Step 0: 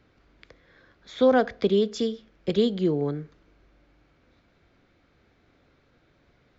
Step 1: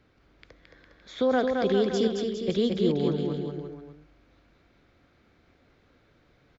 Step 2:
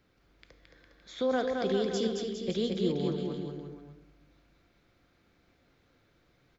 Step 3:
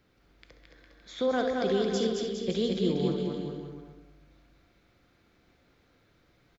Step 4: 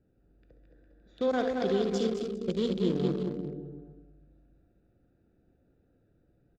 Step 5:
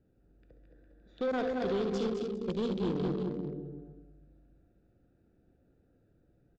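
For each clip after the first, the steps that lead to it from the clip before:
limiter -14.5 dBFS, peak gain reduction 4.5 dB; on a send: bouncing-ball echo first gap 0.22 s, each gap 0.85×, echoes 5; on the sum: gain -1.5 dB
high shelf 5500 Hz +10 dB; reverb RT60 0.90 s, pre-delay 6 ms, DRR 10 dB; gain -6 dB
loudspeakers at several distances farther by 22 m -10 dB, 70 m -12 dB; gain +1.5 dB
Wiener smoothing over 41 samples
soft clip -26 dBFS, distortion -13 dB; air absorption 68 m

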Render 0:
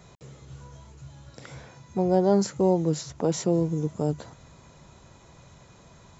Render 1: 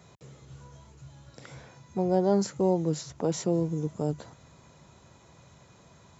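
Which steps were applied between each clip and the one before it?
HPF 67 Hz; gain -3 dB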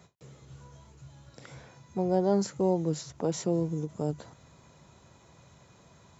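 ending taper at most 310 dB/s; gain -1.5 dB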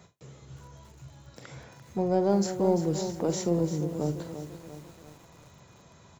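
in parallel at -11 dB: soft clip -28 dBFS, distortion -7 dB; on the sum: doubler 46 ms -12 dB; lo-fi delay 0.343 s, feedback 55%, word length 8-bit, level -9.5 dB

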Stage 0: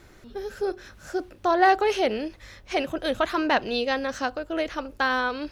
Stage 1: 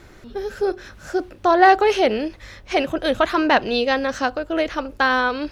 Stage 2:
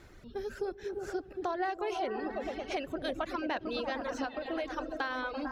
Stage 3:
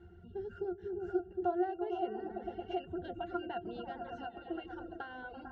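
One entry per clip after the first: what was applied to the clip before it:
high shelf 6600 Hz -5 dB; gain +6 dB
repeats that get brighter 0.112 s, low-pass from 200 Hz, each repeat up 1 oct, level 0 dB; reverb removal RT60 1 s; compressor 4:1, threshold -23 dBFS, peak gain reduction 12.5 dB; gain -9 dB
octave resonator F, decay 0.1 s; gain +6.5 dB

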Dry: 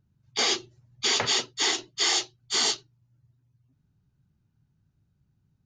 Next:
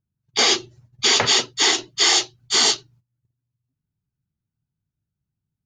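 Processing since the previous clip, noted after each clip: gate -58 dBFS, range -20 dB; gain +7.5 dB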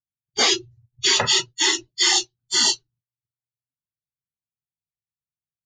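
spectral noise reduction 23 dB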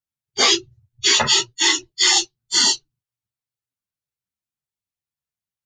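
ensemble effect; gain +5.5 dB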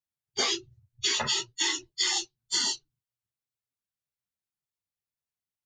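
compressor, threshold -20 dBFS, peak gain reduction 8.5 dB; gain -4.5 dB

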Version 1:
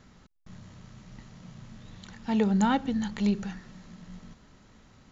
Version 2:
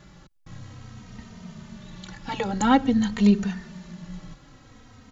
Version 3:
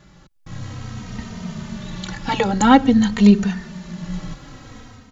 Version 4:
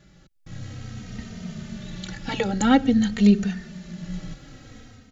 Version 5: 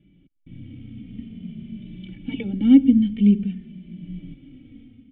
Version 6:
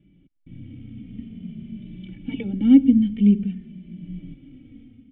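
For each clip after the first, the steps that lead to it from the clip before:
endless flanger 3 ms -0.5 Hz; gain +9 dB
AGC gain up to 11 dB
bell 1000 Hz -13.5 dB 0.39 oct; gain -4.5 dB
vocal tract filter i; gain +7 dB
air absorption 160 m

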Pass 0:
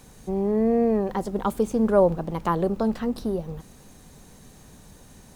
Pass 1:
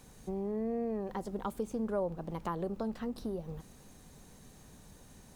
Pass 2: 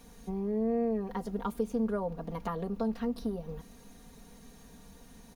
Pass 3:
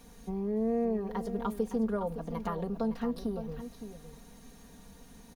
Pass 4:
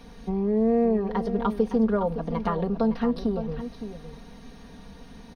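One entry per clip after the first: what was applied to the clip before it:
compressor 2:1, threshold -30 dBFS, peak gain reduction 9.5 dB; gain -6.5 dB
bell 7900 Hz -8 dB 0.27 oct; comb 4.3 ms, depth 81%
echo 0.562 s -11 dB
polynomial smoothing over 15 samples; gain +8 dB

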